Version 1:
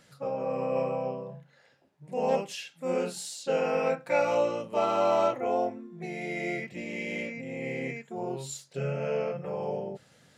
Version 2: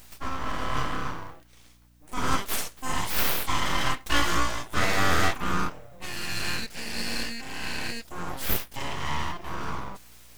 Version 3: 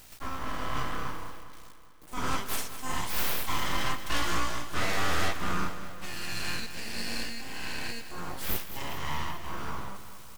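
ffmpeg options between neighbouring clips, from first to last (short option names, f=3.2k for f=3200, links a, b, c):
-af "aemphasis=mode=production:type=riaa,aeval=exprs='abs(val(0))':c=same,aeval=exprs='val(0)+0.000631*(sin(2*PI*60*n/s)+sin(2*PI*2*60*n/s)/2+sin(2*PI*3*60*n/s)/3+sin(2*PI*4*60*n/s)/4+sin(2*PI*5*60*n/s)/5)':c=same,volume=6dB"
-filter_complex "[0:a]volume=16dB,asoftclip=hard,volume=-16dB,acrusher=bits=7:mix=0:aa=0.000001,asplit=2[a][b];[b]aecho=0:1:204|408|612|816|1020|1224:0.251|0.146|0.0845|0.049|0.0284|0.0165[c];[a][c]amix=inputs=2:normalize=0,volume=-4dB"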